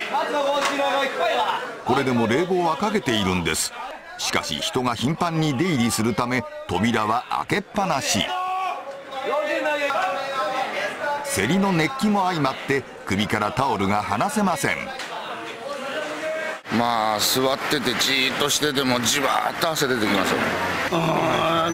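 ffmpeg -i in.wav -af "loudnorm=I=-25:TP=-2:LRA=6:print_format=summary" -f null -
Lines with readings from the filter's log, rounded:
Input Integrated:    -22.1 LUFS
Input True Peak:      -3.4 dBTP
Input LRA:             3.5 LU
Input Threshold:     -32.1 LUFS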